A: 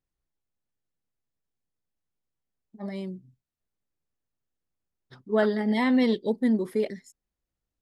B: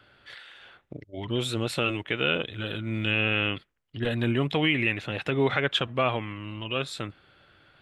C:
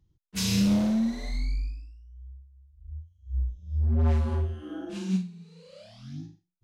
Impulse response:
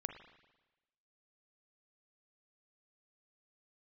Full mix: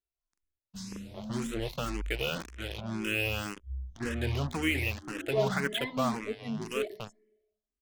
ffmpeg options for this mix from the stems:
-filter_complex "[0:a]aecho=1:1:3:0.8,asplit=2[a][b];[b]adelay=2.2,afreqshift=-0.76[c];[a][c]amix=inputs=2:normalize=1,volume=-9.5dB,asplit=2[d][e];[e]volume=-4dB[f];[1:a]highshelf=f=5.7k:g=-10.5,bandreject=f=50:t=h:w=6,bandreject=f=100:t=h:w=6,bandreject=f=150:t=h:w=6,bandreject=f=200:t=h:w=6,bandreject=f=250:t=h:w=6,bandreject=f=300:t=h:w=6,bandreject=f=350:t=h:w=6,bandreject=f=400:t=h:w=6,acrusher=bits=4:mix=0:aa=0.5,volume=-3dB[g];[2:a]agate=range=-33dB:threshold=-50dB:ratio=3:detection=peak,lowshelf=f=110:g=9,alimiter=level_in=1.5dB:limit=-24dB:level=0:latency=1,volume=-1.5dB,adelay=400,volume=-6dB[h];[3:a]atrim=start_sample=2205[i];[f][i]afir=irnorm=-1:irlink=0[j];[d][g][h][j]amix=inputs=4:normalize=0,asplit=2[k][l];[l]afreqshift=1.9[m];[k][m]amix=inputs=2:normalize=1"

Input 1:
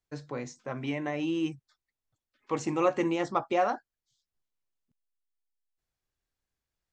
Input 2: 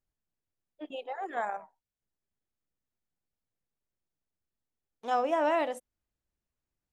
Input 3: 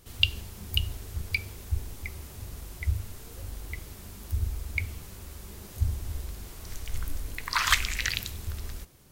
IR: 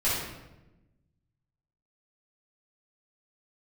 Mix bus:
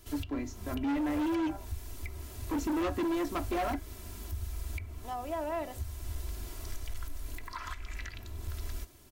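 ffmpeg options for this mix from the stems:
-filter_complex "[0:a]equalizer=f=280:t=o:w=0.31:g=15,volume=-5dB[a];[1:a]volume=-5dB[b];[2:a]volume=-1dB[c];[b][c]amix=inputs=2:normalize=0,acrossover=split=600|1500[d][e][f];[d]acompressor=threshold=-34dB:ratio=4[g];[e]acompressor=threshold=-35dB:ratio=4[h];[f]acompressor=threshold=-47dB:ratio=4[i];[g][h][i]amix=inputs=3:normalize=0,alimiter=level_in=5dB:limit=-24dB:level=0:latency=1:release=457,volume=-5dB,volume=0dB[j];[a][j]amix=inputs=2:normalize=0,aecho=1:1:3:0.62,volume=28.5dB,asoftclip=hard,volume=-28.5dB"

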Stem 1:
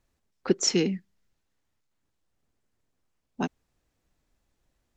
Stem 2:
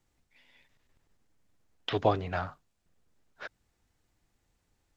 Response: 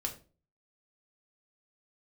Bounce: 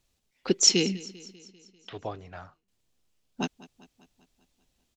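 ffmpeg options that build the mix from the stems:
-filter_complex "[0:a]highshelf=f=2.3k:t=q:w=1.5:g=7,volume=-1.5dB,asplit=3[a][b][c];[a]atrim=end=1.36,asetpts=PTS-STARTPTS,afade=t=out:st=1.356:d=0.004:c=hsin[d];[b]atrim=start=1.36:end=2.68,asetpts=PTS-STARTPTS,volume=0[e];[c]atrim=start=2.68,asetpts=PTS-STARTPTS,afade=t=in:d=0.004:c=hsin[f];[d][e][f]concat=n=3:v=0:a=1,asplit=2[g][h];[h]volume=-20dB[i];[1:a]volume=-10.5dB[j];[i]aecho=0:1:197|394|591|788|985|1182|1379|1576|1773:1|0.58|0.336|0.195|0.113|0.0656|0.0381|0.0221|0.0128[k];[g][j][k]amix=inputs=3:normalize=0"

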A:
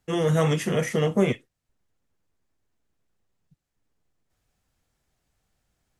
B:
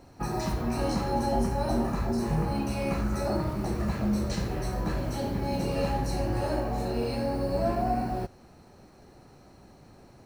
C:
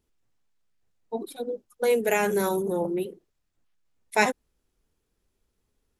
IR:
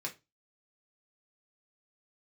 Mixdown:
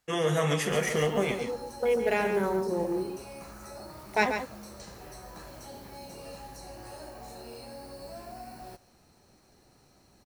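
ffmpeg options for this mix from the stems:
-filter_complex "[0:a]lowshelf=f=340:g=-10.5,acompressor=threshold=-24dB:ratio=6,volume=-0.5dB,asplit=3[a][b][c];[b]volume=-8.5dB[d];[c]volume=-6dB[e];[1:a]highshelf=f=2.7k:g=11.5,acrossover=split=470|1500|4900[f][g][h][i];[f]acompressor=threshold=-40dB:ratio=4[j];[g]acompressor=threshold=-35dB:ratio=4[k];[h]acompressor=threshold=-49dB:ratio=4[l];[i]acompressor=threshold=-43dB:ratio=4[m];[j][k][l][m]amix=inputs=4:normalize=0,adelay=500,volume=-9.5dB,asplit=2[n][o];[o]volume=-20.5dB[p];[2:a]afwtdn=0.0126,acrusher=bits=9:mode=log:mix=0:aa=0.000001,volume=-3.5dB,asplit=2[q][r];[r]volume=-7.5dB[s];[3:a]atrim=start_sample=2205[t];[d][t]afir=irnorm=-1:irlink=0[u];[e][p][s]amix=inputs=3:normalize=0,aecho=0:1:138:1[v];[a][n][q][u][v]amix=inputs=5:normalize=0"

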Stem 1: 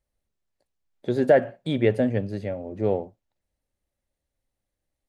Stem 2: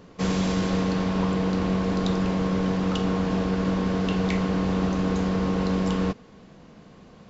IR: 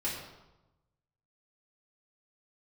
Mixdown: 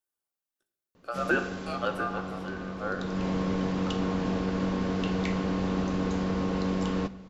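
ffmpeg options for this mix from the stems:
-filter_complex "[0:a]highpass=160,aemphasis=mode=production:type=50kf,aeval=exprs='val(0)*sin(2*PI*950*n/s)':c=same,volume=-9.5dB,asplit=2[a][b];[b]volume=-8dB[c];[1:a]acontrast=77,adelay=950,volume=-11dB,afade=t=in:st=2.98:d=0.3:silence=0.354813,asplit=2[d][e];[e]volume=-18dB[f];[2:a]atrim=start_sample=2205[g];[c][f]amix=inputs=2:normalize=0[h];[h][g]afir=irnorm=-1:irlink=0[i];[a][d][i]amix=inputs=3:normalize=0"

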